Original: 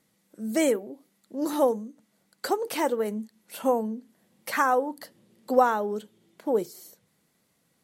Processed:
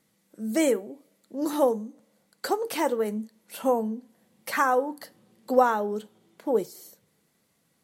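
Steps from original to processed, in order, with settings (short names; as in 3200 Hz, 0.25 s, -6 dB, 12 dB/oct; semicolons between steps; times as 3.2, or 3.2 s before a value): two-slope reverb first 0.27 s, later 1.6 s, from -28 dB, DRR 14.5 dB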